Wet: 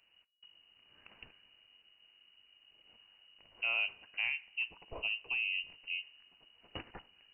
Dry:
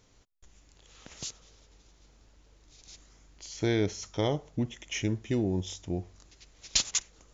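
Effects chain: frequency inversion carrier 2.9 kHz; two-slope reverb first 0.23 s, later 1.6 s, DRR 15 dB; trim -7.5 dB

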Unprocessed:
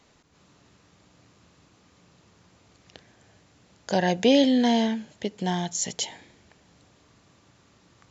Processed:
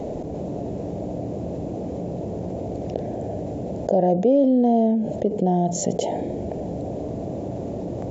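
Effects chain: FFT filter 110 Hz 0 dB, 670 Hz +8 dB, 1.2 kHz -25 dB, 2.3 kHz -22 dB, 4.5 kHz -25 dB, 7.9 kHz -20 dB; level flattener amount 70%; trim -4.5 dB

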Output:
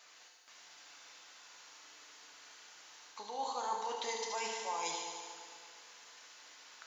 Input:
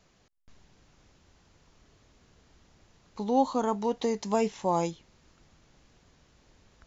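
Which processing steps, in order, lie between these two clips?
high-pass 1.1 kHz 12 dB/octave; reverse; compression 6:1, threshold -47 dBFS, peak gain reduction 17.5 dB; reverse; on a send: feedback echo behind a high-pass 74 ms, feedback 76%, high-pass 3 kHz, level -4.5 dB; on the sum: FDN reverb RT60 2.2 s, low-frequency decay 0.8×, high-frequency decay 0.5×, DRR 0.5 dB; trim +8.5 dB

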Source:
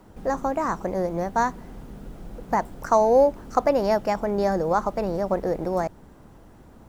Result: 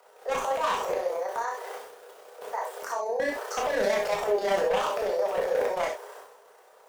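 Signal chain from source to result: steep high-pass 410 Hz 96 dB/octave; transient shaper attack -5 dB, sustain +12 dB; peak limiter -16.5 dBFS, peak gain reduction 7.5 dB; 1.06–3.20 s: compression 2:1, threshold -32 dBFS, peak gain reduction 7 dB; wavefolder -22 dBFS; AM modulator 31 Hz, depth 40%; gated-style reverb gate 100 ms flat, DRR -1 dB

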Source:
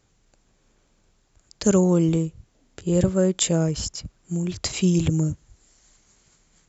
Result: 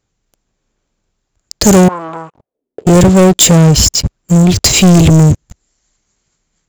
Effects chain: waveshaping leveller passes 5; 1.88–2.87 s: auto-wah 340–1100 Hz, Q 3.8, up, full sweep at -13 dBFS; dynamic bell 1.4 kHz, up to -4 dB, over -28 dBFS, Q 0.84; trim +5 dB

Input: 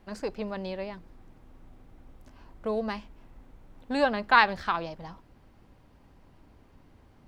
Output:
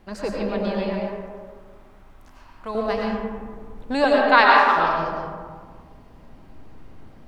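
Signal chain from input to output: 0.92–2.75 s: resonant low shelf 700 Hz -8 dB, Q 1.5; 4.04–4.76 s: elliptic high-pass 250 Hz; algorithmic reverb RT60 1.8 s, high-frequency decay 0.35×, pre-delay 65 ms, DRR -2.5 dB; trim +4.5 dB

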